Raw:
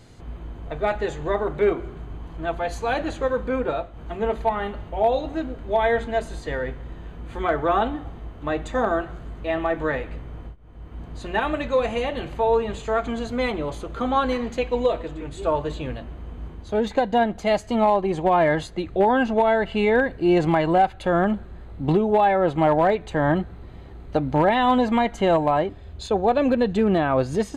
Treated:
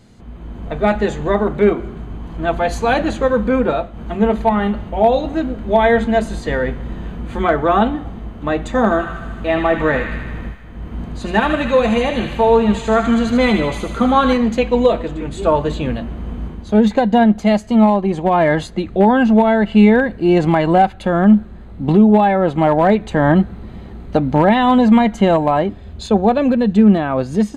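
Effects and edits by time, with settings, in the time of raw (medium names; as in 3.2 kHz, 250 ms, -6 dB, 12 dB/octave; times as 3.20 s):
8.77–14.33 s: feedback echo behind a high-pass 77 ms, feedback 68%, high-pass 1.4 kHz, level -5 dB
whole clip: peaking EQ 210 Hz +13 dB 0.33 oct; level rider; trim -1 dB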